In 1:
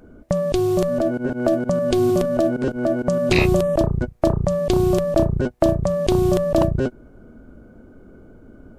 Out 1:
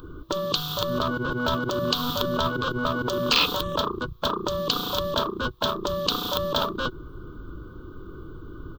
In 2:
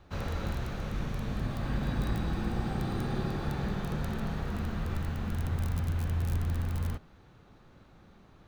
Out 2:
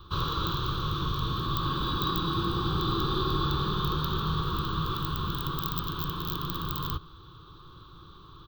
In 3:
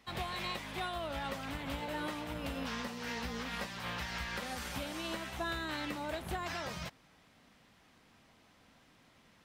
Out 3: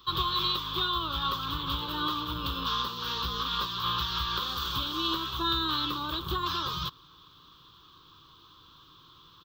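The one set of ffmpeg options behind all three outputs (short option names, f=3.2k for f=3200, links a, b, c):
-af "aeval=exprs='clip(val(0),-1,0.168)':c=same,firequalizer=gain_entry='entry(160,0);entry(220,-16);entry(330,2);entry(690,-22);entry(1100,11);entry(2000,-20);entry(3400,12);entry(5100,-2);entry(11000,-26);entry(15000,11)':delay=0.05:min_phase=1,afftfilt=real='re*lt(hypot(re,im),0.2)':imag='im*lt(hypot(re,im),0.2)':win_size=1024:overlap=0.75,volume=7.5dB"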